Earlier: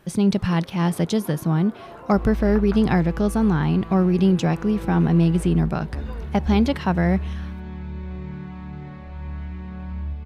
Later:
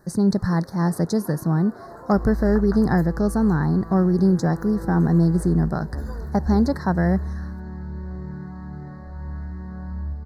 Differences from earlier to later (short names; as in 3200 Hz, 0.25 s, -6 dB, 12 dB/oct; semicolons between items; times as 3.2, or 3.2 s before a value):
first sound: remove air absorption 150 m; master: add elliptic band-stop 1800–4300 Hz, stop band 60 dB